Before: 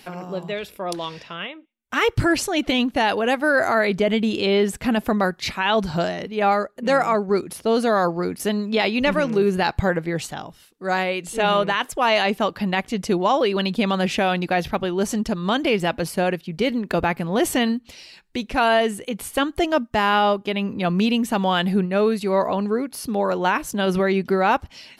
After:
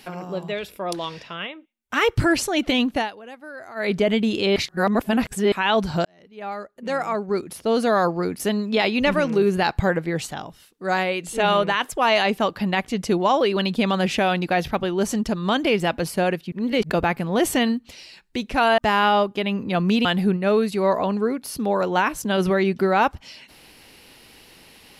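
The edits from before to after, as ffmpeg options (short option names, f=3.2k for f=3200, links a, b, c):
-filter_complex "[0:a]asplit=10[a][b][c][d][e][f][g][h][i][j];[a]atrim=end=3.11,asetpts=PTS-STARTPTS,afade=t=out:st=2.95:d=0.16:silence=0.105925[k];[b]atrim=start=3.11:end=3.75,asetpts=PTS-STARTPTS,volume=-19.5dB[l];[c]atrim=start=3.75:end=4.562,asetpts=PTS-STARTPTS,afade=t=in:d=0.16:silence=0.105925[m];[d]atrim=start=4.558:end=5.522,asetpts=PTS-STARTPTS,areverse[n];[e]atrim=start=5.518:end=6.05,asetpts=PTS-STARTPTS,afade=t=out:st=0.528:d=0.004:c=hsin[o];[f]atrim=start=6.05:end=16.522,asetpts=PTS-STARTPTS,afade=t=in:d=1.9[p];[g]atrim=start=16.518:end=16.902,asetpts=PTS-STARTPTS,areverse[q];[h]atrim=start=16.898:end=18.782[r];[i]atrim=start=19.878:end=21.152[s];[j]atrim=start=21.538[t];[k][l][m]concat=n=3:v=0:a=1[u];[u][n]acrossfade=d=0.004:c1=hsin:c2=hsin[v];[o][p]concat=n=2:v=0:a=1[w];[v][w]acrossfade=d=0.004:c1=hsin:c2=hsin[x];[x][q]acrossfade=d=0.004:c1=hsin:c2=hsin[y];[y][r]acrossfade=d=0.004:c1=hsin:c2=hsin[z];[z][s]acrossfade=d=0.004:c1=hsin:c2=hsin[aa];[aa][t]acrossfade=d=0.004:c1=hsin:c2=hsin"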